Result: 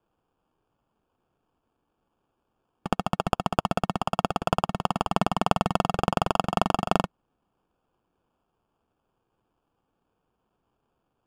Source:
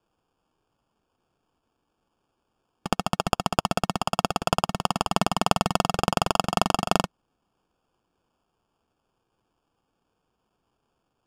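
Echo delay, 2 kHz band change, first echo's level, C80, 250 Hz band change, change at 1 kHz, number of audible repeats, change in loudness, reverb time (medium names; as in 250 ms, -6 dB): no echo, -3.0 dB, no echo, no reverb, 0.0 dB, -1.0 dB, no echo, -1.5 dB, no reverb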